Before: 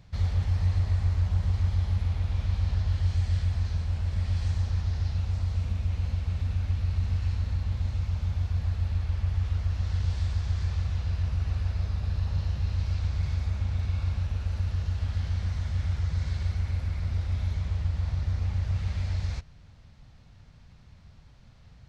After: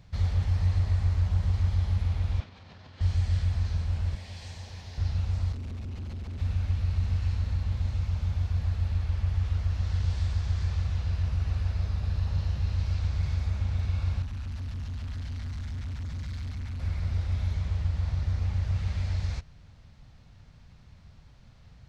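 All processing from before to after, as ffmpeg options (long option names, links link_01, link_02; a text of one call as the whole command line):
ffmpeg -i in.wav -filter_complex "[0:a]asettb=1/sr,asplit=3[link_01][link_02][link_03];[link_01]atrim=end=2.404[link_04];[link_02]atrim=start=2.4:end=3.01,asetpts=PTS-STARTPTS,afade=type=in:duration=0.004:curve=qsin,afade=type=out:start_time=0.606:duration=0.004:curve=qsin,acompressor=threshold=-30dB:ratio=12:attack=3.2:release=140:knee=1:detection=peak,highpass=230,lowpass=4900[link_05];[link_03]atrim=start=3.006[link_06];[link_04][link_05]acrossfade=duration=0.004:curve1=hsin:curve2=qsin[link_07];[link_07][link_06]acrossfade=duration=0.004:curve1=qsin:curve2=hsin,asettb=1/sr,asplit=3[link_08][link_09][link_10];[link_08]atrim=end=4.154[link_11];[link_09]atrim=start=4.15:end=4.98,asetpts=PTS-STARTPTS,afade=type=in:duration=0.004:curve=qsin,afade=type=out:start_time=0.826:duration=0.004:curve=qsin,highpass=frequency=470:poles=1,equalizer=frequency=1300:width_type=o:width=0.48:gain=-9.5[link_12];[link_10]atrim=start=4.976[link_13];[link_11][link_12]acrossfade=duration=0.004:curve1=hsin:curve2=qsin[link_14];[link_14][link_13]acrossfade=duration=0.004:curve1=qsin:curve2=hsin,asettb=1/sr,asplit=3[link_15][link_16][link_17];[link_15]atrim=end=5.524[link_18];[link_16]atrim=start=5.52:end=6.41,asetpts=PTS-STARTPTS,afade=type=in:duration=0.004:curve=qsin,afade=type=out:start_time=0.886:duration=0.004:curve=qsin,acompressor=threshold=-28dB:ratio=4:attack=3.2:release=140:knee=1:detection=peak,bandreject=frequency=50:width_type=h:width=6,bandreject=frequency=100:width_type=h:width=6,bandreject=frequency=150:width_type=h:width=6,bandreject=frequency=200:width_type=h:width=6,bandreject=frequency=250:width_type=h:width=6,bandreject=frequency=300:width_type=h:width=6,bandreject=frequency=350:width_type=h:width=6,bandreject=frequency=400:width_type=h:width=6,volume=33.5dB,asoftclip=hard,volume=-33.5dB[link_19];[link_17]atrim=start=6.406[link_20];[link_18][link_19]acrossfade=duration=0.004:curve1=hsin:curve2=qsin[link_21];[link_21][link_20]acrossfade=duration=0.004:curve1=qsin:curve2=hsin,asettb=1/sr,asplit=3[link_22][link_23][link_24];[link_22]atrim=end=14.224[link_25];[link_23]atrim=start=14.22:end=16.8,asetpts=PTS-STARTPTS,afade=type=in:duration=0.004:curve=qsin,afade=type=out:start_time=2.576:duration=0.004:curve=qsin,volume=31.5dB,asoftclip=hard,volume=-31.5dB,equalizer=frequency=390:width=1.2:gain=-13[link_26];[link_24]atrim=start=16.796[link_27];[link_25][link_26]acrossfade=duration=0.004:curve1=hsin:curve2=qsin[link_28];[link_28][link_27]acrossfade=duration=0.004:curve1=qsin:curve2=hsin" out.wav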